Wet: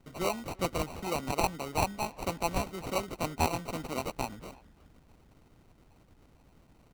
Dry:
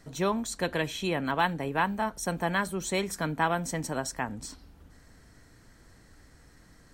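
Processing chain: sample-and-hold 26×; speakerphone echo 0.34 s, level -20 dB; harmonic-percussive split harmonic -10 dB

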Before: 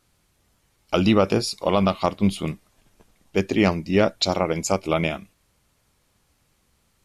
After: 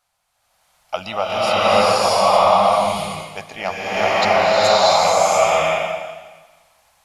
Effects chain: resonant low shelf 500 Hz -12.5 dB, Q 3; bloom reverb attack 0.68 s, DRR -12 dB; gain -4 dB

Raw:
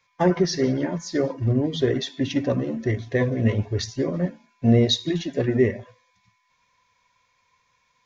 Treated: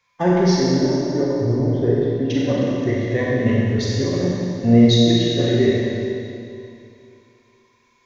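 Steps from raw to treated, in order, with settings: 0.61–2.3 LPF 1100 Hz 12 dB/oct; Schroeder reverb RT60 2.6 s, combs from 30 ms, DRR -4.5 dB; gain -1 dB

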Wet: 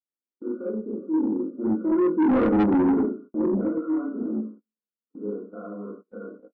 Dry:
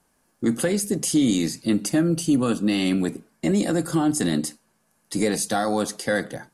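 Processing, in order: Doppler pass-by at 2.58, 17 m/s, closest 5.1 m; brick-wall FIR band-pass 180–1500 Hz; fixed phaser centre 340 Hz, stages 4; doubler 19 ms -3.5 dB; Schroeder reverb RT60 0.42 s, combs from 32 ms, DRR -5.5 dB; soft clip -21 dBFS, distortion -7 dB; gate -47 dBFS, range -27 dB; gain +4.5 dB

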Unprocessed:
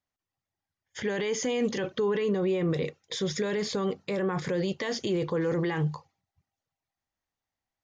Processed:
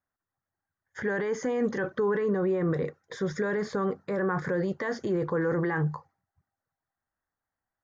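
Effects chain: resonant high shelf 2100 Hz -9.5 dB, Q 3

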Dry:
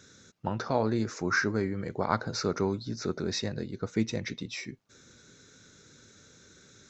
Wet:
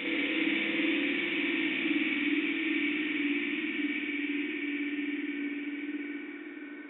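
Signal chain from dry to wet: sine-wave speech; Paulstretch 13×, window 1.00 s, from 4.48; spring tank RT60 1.5 s, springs 52 ms, chirp 25 ms, DRR -4.5 dB; gain +4 dB

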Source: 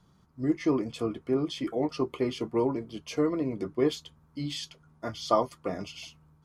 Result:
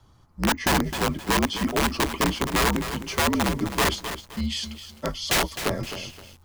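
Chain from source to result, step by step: wrapped overs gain 22 dB; frequency shift -69 Hz; lo-fi delay 0.26 s, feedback 35%, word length 8-bit, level -10 dB; gain +6.5 dB

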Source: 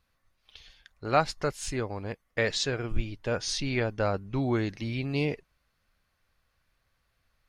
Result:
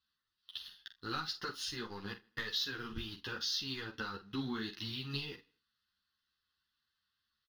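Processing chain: weighting filter D; sample leveller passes 2; compressor 6:1, threshold -24 dBFS, peak gain reduction 12 dB; fixed phaser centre 2300 Hz, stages 6; doubler 45 ms -10.5 dB; on a send: feedback echo 79 ms, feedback 40%, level -23 dB; on the sum: ensemble effect; gain -6 dB

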